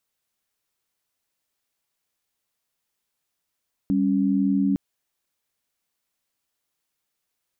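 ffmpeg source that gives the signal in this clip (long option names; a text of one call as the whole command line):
ffmpeg -f lavfi -i "aevalsrc='0.0891*(sin(2*PI*196*t)+sin(2*PI*277.18*t))':duration=0.86:sample_rate=44100" out.wav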